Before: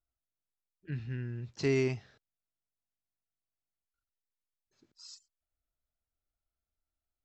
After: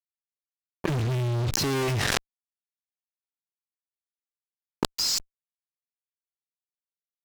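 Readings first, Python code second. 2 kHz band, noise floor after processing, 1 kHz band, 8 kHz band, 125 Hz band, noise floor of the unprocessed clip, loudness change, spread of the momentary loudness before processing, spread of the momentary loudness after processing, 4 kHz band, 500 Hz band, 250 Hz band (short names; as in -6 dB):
+11.0 dB, under -85 dBFS, +22.5 dB, n/a, +10.0 dB, under -85 dBFS, +7.5 dB, 21 LU, 7 LU, +21.0 dB, +3.0 dB, +5.5 dB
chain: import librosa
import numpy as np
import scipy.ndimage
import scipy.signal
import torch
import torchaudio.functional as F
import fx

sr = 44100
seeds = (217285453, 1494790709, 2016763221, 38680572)

y = fx.fuzz(x, sr, gain_db=56.0, gate_db=-59.0)
y = fx.env_flatten(y, sr, amount_pct=100)
y = F.gain(torch.from_numpy(y), -12.0).numpy()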